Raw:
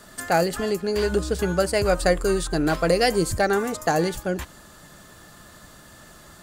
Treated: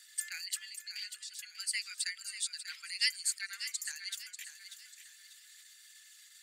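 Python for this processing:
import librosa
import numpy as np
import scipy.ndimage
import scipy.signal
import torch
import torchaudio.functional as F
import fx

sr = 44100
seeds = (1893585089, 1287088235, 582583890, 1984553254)

y = fx.envelope_sharpen(x, sr, power=1.5)
y = scipy.signal.sosfilt(scipy.signal.ellip(4, 1.0, 70, 2100.0, 'highpass', fs=sr, output='sos'), y)
y = fx.echo_feedback(y, sr, ms=591, feedback_pct=35, wet_db=-10.5)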